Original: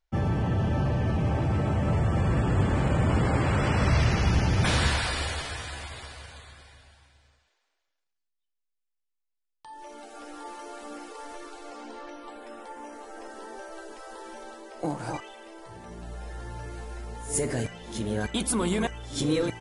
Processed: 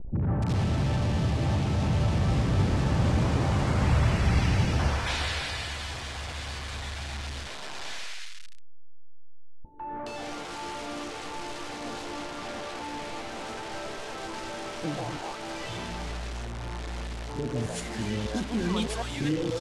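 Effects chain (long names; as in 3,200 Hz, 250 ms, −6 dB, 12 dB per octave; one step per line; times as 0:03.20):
linear delta modulator 64 kbit/s, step −28 dBFS
high-frequency loss of the air 78 metres
three-band delay without the direct sound lows, mids, highs 150/420 ms, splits 450/1,500 Hz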